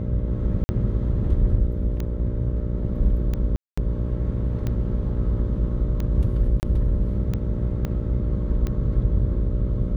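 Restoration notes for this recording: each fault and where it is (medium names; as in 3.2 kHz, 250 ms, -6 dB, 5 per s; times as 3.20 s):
buzz 60 Hz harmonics 10 -27 dBFS
tick 45 rpm -16 dBFS
0.64–0.69 s: dropout 50 ms
3.56–3.77 s: dropout 215 ms
6.60–6.63 s: dropout 29 ms
7.85 s: pop -15 dBFS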